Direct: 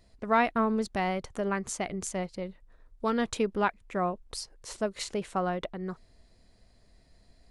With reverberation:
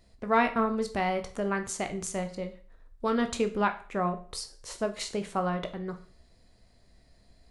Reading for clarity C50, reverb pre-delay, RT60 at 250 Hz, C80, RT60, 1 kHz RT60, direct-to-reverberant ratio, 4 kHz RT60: 13.5 dB, 16 ms, 0.40 s, 18.0 dB, 0.40 s, 0.40 s, 7.0 dB, 0.40 s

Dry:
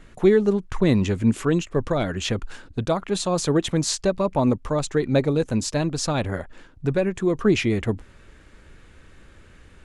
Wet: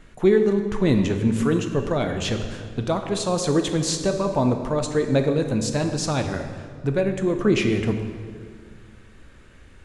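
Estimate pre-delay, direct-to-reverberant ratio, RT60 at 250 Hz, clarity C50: 10 ms, 5.5 dB, 2.6 s, 7.0 dB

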